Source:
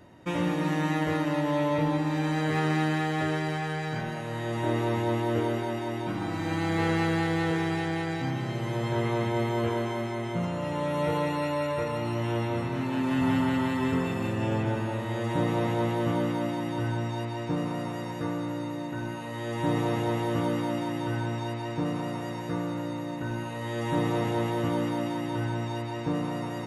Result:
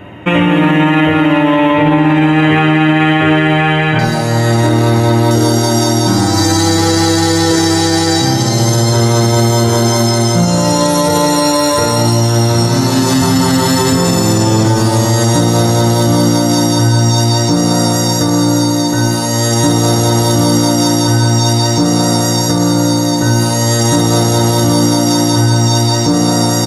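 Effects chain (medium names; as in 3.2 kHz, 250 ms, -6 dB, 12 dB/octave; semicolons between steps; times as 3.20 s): resonant high shelf 3.7 kHz -8.5 dB, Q 3, from 3.99 s +6 dB, from 5.31 s +12.5 dB; early reflections 10 ms -7.5 dB, 52 ms -5 dB; loudness maximiser +19.5 dB; trim -1 dB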